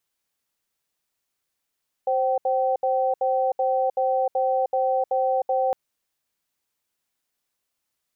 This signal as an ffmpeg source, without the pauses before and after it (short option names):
-f lavfi -i "aevalsrc='0.0794*(sin(2*PI*525*t)+sin(2*PI*770*t))*clip(min(mod(t,0.38),0.31-mod(t,0.38))/0.005,0,1)':d=3.66:s=44100"